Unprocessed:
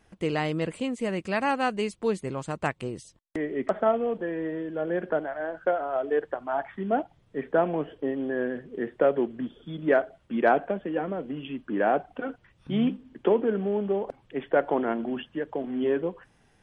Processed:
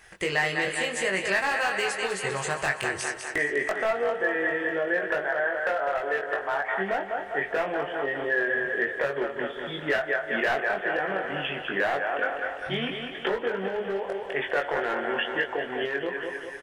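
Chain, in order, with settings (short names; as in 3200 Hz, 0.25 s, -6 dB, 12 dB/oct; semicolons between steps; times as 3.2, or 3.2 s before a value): flange 0.7 Hz, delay 0.8 ms, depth 9 ms, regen -80%; in parallel at -2.5 dB: limiter -23.5 dBFS, peak gain reduction 10 dB; on the sum: EQ curve 120 Hz 0 dB, 250 Hz -11 dB, 380 Hz +2 dB, 7500 Hz +13 dB; thinning echo 0.2 s, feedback 54%, high-pass 230 Hz, level -7.5 dB; on a send at -18 dB: reverb RT60 4.6 s, pre-delay 32 ms; on the sum: hard clip -17.5 dBFS, distortion -13 dB; compressor, threshold -27 dBFS, peak gain reduction 8 dB; bell 1800 Hz +10 dB 0.53 oct; doubler 21 ms -3.5 dB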